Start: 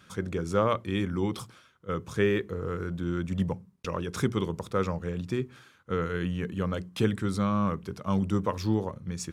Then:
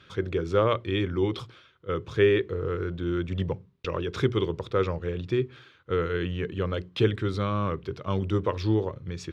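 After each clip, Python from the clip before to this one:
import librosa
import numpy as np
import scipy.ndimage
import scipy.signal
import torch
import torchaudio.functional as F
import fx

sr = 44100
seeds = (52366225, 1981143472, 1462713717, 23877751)

y = fx.curve_eq(x, sr, hz=(130.0, 200.0, 370.0, 790.0, 3600.0, 9100.0), db=(0, -10, 3, -5, 2, -20))
y = y * librosa.db_to_amplitude(3.5)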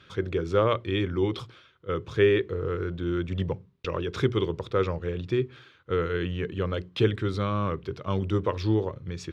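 y = x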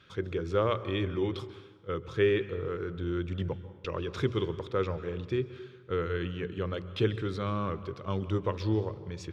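y = fx.rev_plate(x, sr, seeds[0], rt60_s=1.4, hf_ratio=0.65, predelay_ms=120, drr_db=14.0)
y = y * librosa.db_to_amplitude(-4.5)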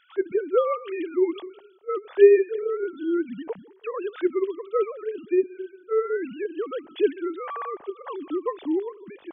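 y = fx.sine_speech(x, sr)
y = y * librosa.db_to_amplitude(6.5)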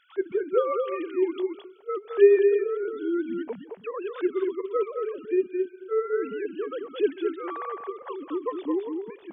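y = x + 10.0 ** (-5.5 / 20.0) * np.pad(x, (int(218 * sr / 1000.0), 0))[:len(x)]
y = y * librosa.db_to_amplitude(-2.5)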